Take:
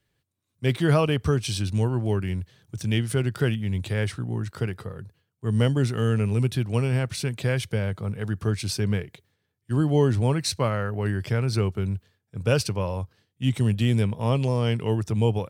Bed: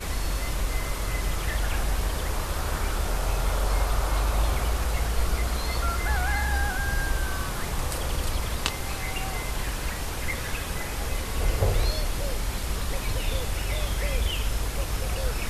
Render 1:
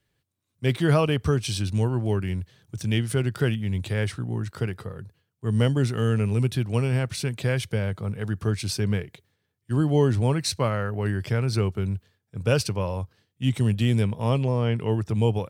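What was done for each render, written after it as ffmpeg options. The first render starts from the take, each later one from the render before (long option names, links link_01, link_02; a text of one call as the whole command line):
ffmpeg -i in.wav -filter_complex "[0:a]asettb=1/sr,asplit=3[link_01][link_02][link_03];[link_01]atrim=end=14.384[link_04];[link_02]atrim=start=14.38:end=15.09,asetpts=PTS-STARTPTS,afade=type=in:duration=0.004:curve=qsin,afade=type=out:start_time=0.706:duration=0.004:curve=qsin,acrossover=split=3000[link_05][link_06];[link_06]acompressor=threshold=-53dB:ratio=4:attack=1:release=60[link_07];[link_05][link_07]amix=inputs=2:normalize=0[link_08];[link_03]atrim=start=15.086[link_09];[link_04][link_08]acrossfade=duration=0.004:curve1=hsin:curve2=qsin[link_10];[link_10][link_09]acrossfade=duration=0.004:curve1=qsin:curve2=hsin" out.wav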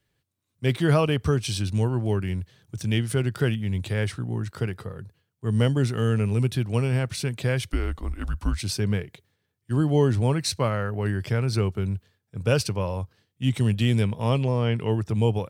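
ffmpeg -i in.wav -filter_complex "[0:a]asettb=1/sr,asplit=3[link_01][link_02][link_03];[link_01]atrim=end=7.704[link_04];[link_02]atrim=start=7.7:end=8.61,asetpts=PTS-STARTPTS,afade=type=in:duration=0.004:curve=qsin,afade=type=out:start_time=0.906:duration=0.004:curve=qsin,afreqshift=-170[link_05];[link_03]atrim=start=8.606[link_06];[link_04][link_05]acrossfade=duration=0.004:curve1=hsin:curve2=qsin[link_07];[link_07][link_06]acrossfade=duration=0.004:curve1=qsin:curve2=hsin,asettb=1/sr,asplit=3[link_08][link_09][link_10];[link_08]atrim=end=13.544[link_11];[link_09]atrim=start=13.54:end=14.92,asetpts=PTS-STARTPTS,afade=type=in:duration=0.004:curve=qsin,afade=type=out:start_time=1.376:duration=0.004:curve=qsin,equalizer=frequency=3100:width_type=o:width=2:gain=2.5[link_12];[link_10]atrim=start=14.916[link_13];[link_11][link_12]acrossfade=duration=0.004:curve1=hsin:curve2=qsin[link_14];[link_14][link_13]acrossfade=duration=0.004:curve1=qsin:curve2=hsin" out.wav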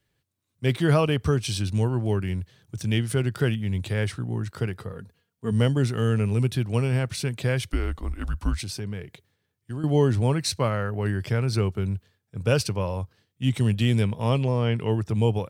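ffmpeg -i in.wav -filter_complex "[0:a]asettb=1/sr,asplit=3[link_01][link_02][link_03];[link_01]atrim=end=4.924[link_04];[link_02]atrim=start=4.92:end=5.52,asetpts=PTS-STARTPTS,afade=type=in:duration=0.004:curve=qsin,afade=type=out:start_time=0.596:duration=0.004:curve=qsin,aecho=1:1:4.3:0.6,atrim=end_sample=26460[link_05];[link_03]atrim=start=5.516[link_06];[link_04][link_05]acrossfade=duration=0.004:curve1=hsin:curve2=qsin[link_07];[link_07][link_06]acrossfade=duration=0.004:curve1=qsin:curve2=hsin,asettb=1/sr,asplit=3[link_08][link_09][link_10];[link_08]atrim=end=8.624[link_11];[link_09]atrim=start=8.62:end=9.84,asetpts=PTS-STARTPTS,afade=type=in:duration=0.004:curve=qsin,afade=type=out:start_time=1.216:duration=0.004:curve=qsin,acompressor=threshold=-31dB:ratio=3:attack=3.2:release=140:knee=1:detection=peak[link_12];[link_10]atrim=start=9.836[link_13];[link_11][link_12]acrossfade=duration=0.004:curve1=hsin:curve2=qsin[link_14];[link_14][link_13]acrossfade=duration=0.004:curve1=qsin:curve2=hsin" out.wav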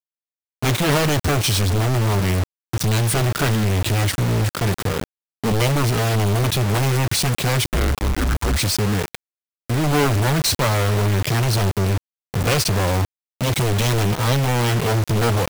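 ffmpeg -i in.wav -filter_complex "[0:a]asplit=2[link_01][link_02];[link_02]aeval=exprs='0.376*sin(PI/2*6.31*val(0)/0.376)':channel_layout=same,volume=-8.5dB[link_03];[link_01][link_03]amix=inputs=2:normalize=0,acrusher=bits=3:mix=0:aa=0.000001" out.wav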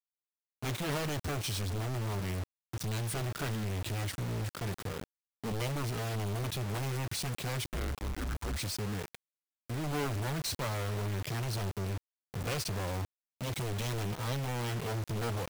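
ffmpeg -i in.wav -af "volume=-16dB" out.wav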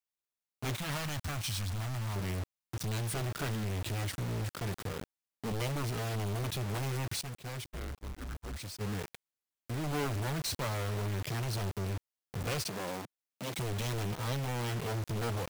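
ffmpeg -i in.wav -filter_complex "[0:a]asettb=1/sr,asplit=3[link_01][link_02][link_03];[link_01]atrim=end=0.764[link_04];[link_02]atrim=start=0.76:end=2.16,asetpts=PTS-STARTPTS,afade=type=in:duration=0.004:curve=qsin,afade=type=out:start_time=1.396:duration=0.004:curve=qsin,equalizer=frequency=400:width=1.6:gain=-14.5[link_05];[link_03]atrim=start=2.156[link_06];[link_04][link_05]acrossfade=duration=0.004:curve1=hsin:curve2=qsin[link_07];[link_07][link_06]acrossfade=duration=0.004:curve1=qsin:curve2=hsin,asettb=1/sr,asplit=3[link_08][link_09][link_10];[link_08]atrim=end=7.214[link_11];[link_09]atrim=start=7.21:end=8.81,asetpts=PTS-STARTPTS,afade=type=in:duration=0.004:curve=qsin,afade=type=out:start_time=1.596:duration=0.004:curve=qsin,agate=range=-33dB:threshold=-31dB:ratio=3:release=100:detection=peak[link_12];[link_10]atrim=start=8.806[link_13];[link_11][link_12]acrossfade=duration=0.004:curve1=hsin:curve2=qsin[link_14];[link_14][link_13]acrossfade=duration=0.004:curve1=qsin:curve2=hsin,asettb=1/sr,asplit=3[link_15][link_16][link_17];[link_15]atrim=end=12.674[link_18];[link_16]atrim=start=12.67:end=13.59,asetpts=PTS-STARTPTS,afade=type=in:duration=0.004:curve=qsin,afade=type=out:start_time=0.916:duration=0.004:curve=qsin,highpass=frequency=150:width=0.5412,highpass=frequency=150:width=1.3066[link_19];[link_17]atrim=start=13.586[link_20];[link_18][link_19]acrossfade=duration=0.004:curve1=hsin:curve2=qsin[link_21];[link_21][link_20]acrossfade=duration=0.004:curve1=qsin:curve2=hsin" out.wav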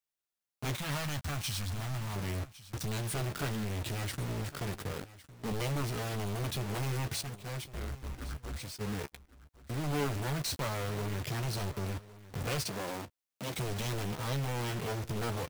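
ffmpeg -i in.wav -filter_complex "[0:a]asplit=2[link_01][link_02];[link_02]adelay=14,volume=-11dB[link_03];[link_01][link_03]amix=inputs=2:normalize=0,aecho=1:1:1107:0.133" out.wav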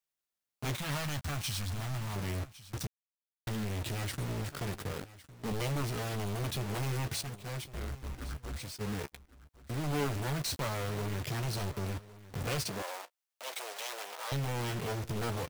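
ffmpeg -i in.wav -filter_complex "[0:a]asettb=1/sr,asplit=3[link_01][link_02][link_03];[link_01]atrim=end=12.824[link_04];[link_02]atrim=start=12.82:end=14.32,asetpts=PTS-STARTPTS,afade=type=in:duration=0.004:curve=qsin,afade=type=out:start_time=1.496:duration=0.004:curve=qsin,highpass=frequency=540:width=0.5412,highpass=frequency=540:width=1.3066[link_05];[link_03]atrim=start=14.316[link_06];[link_04][link_05]acrossfade=duration=0.004:curve1=hsin:curve2=qsin[link_07];[link_07][link_06]acrossfade=duration=0.004:curve1=qsin:curve2=hsin,asplit=3[link_08][link_09][link_10];[link_08]atrim=end=2.87,asetpts=PTS-STARTPTS,afade=type=out:start_time=2.866:duration=0.004:curve=hsin[link_11];[link_09]atrim=start=2.87:end=3.47,asetpts=PTS-STARTPTS,volume=0[link_12];[link_10]atrim=start=3.47,asetpts=PTS-STARTPTS,afade=type=in:duration=0.004:curve=hsin[link_13];[link_11][link_12][link_13]concat=n=3:v=0:a=1" out.wav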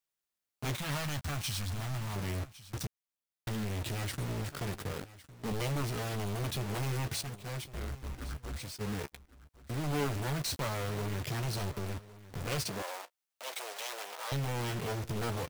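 ffmpeg -i in.wav -filter_complex "[0:a]asettb=1/sr,asplit=3[link_01][link_02][link_03];[link_01]atrim=end=11.784[link_04];[link_02]atrim=start=11.78:end=12.52,asetpts=PTS-STARTPTS,afade=type=in:duration=0.004:curve=qsin,afade=type=out:start_time=0.736:duration=0.004:curve=qsin,aeval=exprs='clip(val(0),-1,0.0112)':channel_layout=same[link_05];[link_03]atrim=start=12.516[link_06];[link_04][link_05]acrossfade=duration=0.004:curve1=hsin:curve2=qsin[link_07];[link_07][link_06]acrossfade=duration=0.004:curve1=qsin:curve2=hsin" out.wav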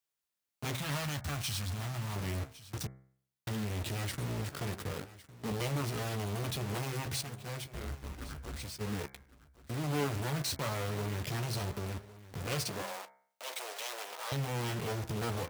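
ffmpeg -i in.wav -af "highpass=42,bandreject=frequency=65.47:width_type=h:width=4,bandreject=frequency=130.94:width_type=h:width=4,bandreject=frequency=196.41:width_type=h:width=4,bandreject=frequency=261.88:width_type=h:width=4,bandreject=frequency=327.35:width_type=h:width=4,bandreject=frequency=392.82:width_type=h:width=4,bandreject=frequency=458.29:width_type=h:width=4,bandreject=frequency=523.76:width_type=h:width=4,bandreject=frequency=589.23:width_type=h:width=4,bandreject=frequency=654.7:width_type=h:width=4,bandreject=frequency=720.17:width_type=h:width=4,bandreject=frequency=785.64:width_type=h:width=4,bandreject=frequency=851.11:width_type=h:width=4,bandreject=frequency=916.58:width_type=h:width=4,bandreject=frequency=982.05:width_type=h:width=4,bandreject=frequency=1047.52:width_type=h:width=4,bandreject=frequency=1112.99:width_type=h:width=4,bandreject=frequency=1178.46:width_type=h:width=4,bandreject=frequency=1243.93:width_type=h:width=4,bandreject=frequency=1309.4:width_type=h:width=4,bandreject=frequency=1374.87:width_type=h:width=4,bandreject=frequency=1440.34:width_type=h:width=4,bandreject=frequency=1505.81:width_type=h:width=4,bandreject=frequency=1571.28:width_type=h:width=4,bandreject=frequency=1636.75:width_type=h:width=4,bandreject=frequency=1702.22:width_type=h:width=4,bandreject=frequency=1767.69:width_type=h:width=4,bandreject=frequency=1833.16:width_type=h:width=4,bandreject=frequency=1898.63:width_type=h:width=4,bandreject=frequency=1964.1:width_type=h:width=4,bandreject=frequency=2029.57:width_type=h:width=4,bandreject=frequency=2095.04:width_type=h:width=4,bandreject=frequency=2160.51:width_type=h:width=4,bandreject=frequency=2225.98:width_type=h:width=4,bandreject=frequency=2291.45:width_type=h:width=4" out.wav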